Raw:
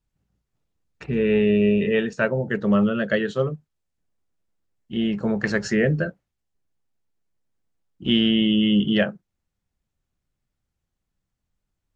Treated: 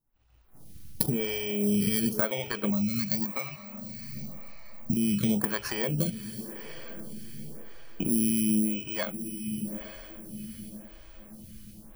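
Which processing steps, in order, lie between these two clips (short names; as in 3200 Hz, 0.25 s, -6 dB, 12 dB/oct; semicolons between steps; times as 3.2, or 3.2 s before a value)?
FFT order left unsorted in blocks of 16 samples; recorder AGC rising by 43 dB/s; bell 450 Hz -6.5 dB 0.92 oct; diffused feedback echo 0.894 s, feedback 41%, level -16 dB; compressor 6:1, threshold -23 dBFS, peak gain reduction 8.5 dB; 2.7–4.97 fixed phaser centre 2200 Hz, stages 8; photocell phaser 0.93 Hz; gain +2.5 dB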